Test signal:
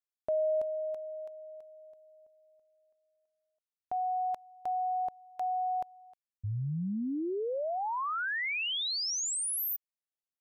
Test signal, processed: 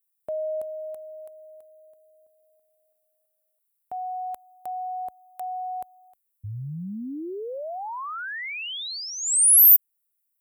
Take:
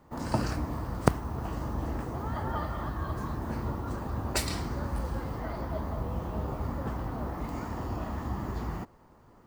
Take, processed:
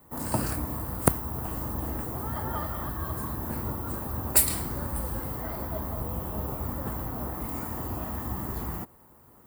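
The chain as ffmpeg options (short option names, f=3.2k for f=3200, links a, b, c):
-filter_complex "[0:a]acrossover=split=1200[a][b];[a]highpass=40[c];[b]aexciter=amount=11.6:drive=2.4:freq=8.3k[d];[c][d]amix=inputs=2:normalize=0"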